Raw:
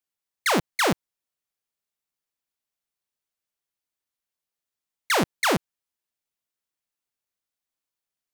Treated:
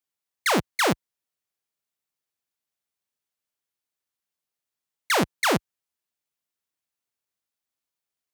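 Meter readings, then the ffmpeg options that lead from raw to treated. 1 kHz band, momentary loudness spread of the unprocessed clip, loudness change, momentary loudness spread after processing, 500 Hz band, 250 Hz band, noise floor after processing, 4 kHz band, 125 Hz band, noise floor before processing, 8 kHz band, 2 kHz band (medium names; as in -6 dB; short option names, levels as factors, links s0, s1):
0.0 dB, 6 LU, 0.0 dB, 6 LU, 0.0 dB, 0.0 dB, under -85 dBFS, 0.0 dB, 0.0 dB, under -85 dBFS, 0.0 dB, 0.0 dB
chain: -af "highpass=52"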